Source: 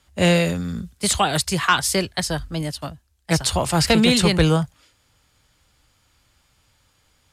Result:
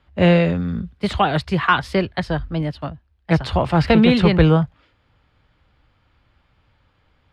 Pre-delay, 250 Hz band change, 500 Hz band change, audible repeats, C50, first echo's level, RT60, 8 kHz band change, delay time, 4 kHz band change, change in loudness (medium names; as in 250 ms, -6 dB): no reverb, +3.5 dB, +3.0 dB, no echo, no reverb, no echo, no reverb, under -20 dB, no echo, -5.5 dB, +1.5 dB